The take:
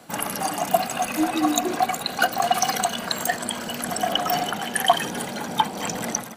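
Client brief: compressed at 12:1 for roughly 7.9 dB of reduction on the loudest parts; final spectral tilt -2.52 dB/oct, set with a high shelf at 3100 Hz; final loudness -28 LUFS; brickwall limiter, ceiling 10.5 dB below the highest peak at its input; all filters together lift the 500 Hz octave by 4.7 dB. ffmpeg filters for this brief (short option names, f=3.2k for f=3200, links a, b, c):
-af "equalizer=f=500:t=o:g=7,highshelf=f=3.1k:g=9,acompressor=threshold=-19dB:ratio=12,volume=-2dB,alimiter=limit=-16.5dB:level=0:latency=1"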